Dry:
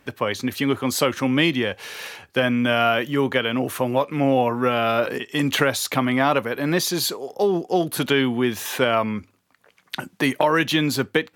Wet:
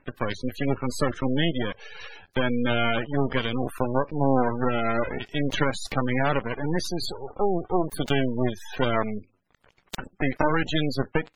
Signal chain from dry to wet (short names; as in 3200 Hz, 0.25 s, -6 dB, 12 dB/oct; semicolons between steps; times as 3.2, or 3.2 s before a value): block floating point 3-bit; half-wave rectifier; spectral gate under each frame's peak -20 dB strong